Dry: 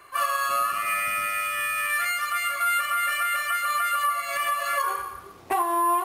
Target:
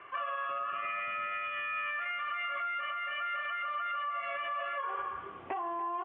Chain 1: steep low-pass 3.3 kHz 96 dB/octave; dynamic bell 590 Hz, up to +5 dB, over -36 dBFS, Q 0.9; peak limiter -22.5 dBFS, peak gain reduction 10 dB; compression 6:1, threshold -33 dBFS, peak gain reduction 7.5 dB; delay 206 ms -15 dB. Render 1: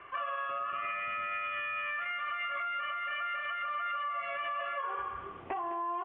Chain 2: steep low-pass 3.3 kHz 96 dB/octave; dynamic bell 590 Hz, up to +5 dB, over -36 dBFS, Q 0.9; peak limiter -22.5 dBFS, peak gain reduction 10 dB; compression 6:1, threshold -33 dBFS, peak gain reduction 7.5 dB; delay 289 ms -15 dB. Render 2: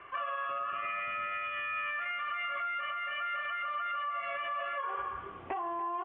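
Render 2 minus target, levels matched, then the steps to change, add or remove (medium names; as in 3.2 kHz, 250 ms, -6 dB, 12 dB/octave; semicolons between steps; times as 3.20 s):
125 Hz band +4.0 dB
add after compression: high-pass 140 Hz 6 dB/octave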